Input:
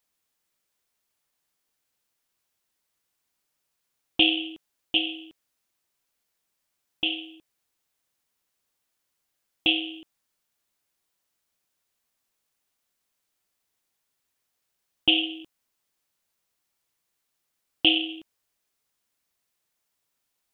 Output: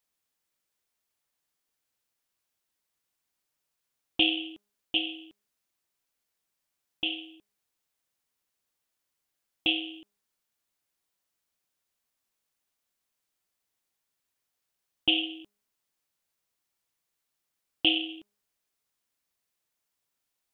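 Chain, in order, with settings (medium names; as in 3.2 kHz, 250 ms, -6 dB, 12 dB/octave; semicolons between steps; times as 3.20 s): de-hum 205 Hz, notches 7; trim -4 dB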